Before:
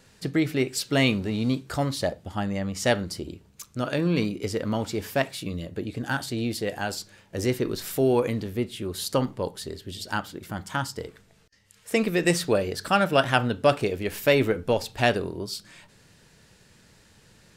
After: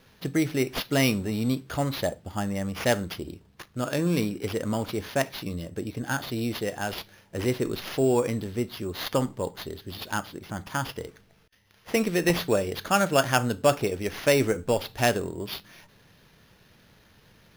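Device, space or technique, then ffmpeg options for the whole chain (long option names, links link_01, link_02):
crushed at another speed: -af "asetrate=22050,aresample=44100,acrusher=samples=11:mix=1:aa=0.000001,asetrate=88200,aresample=44100,volume=-1dB"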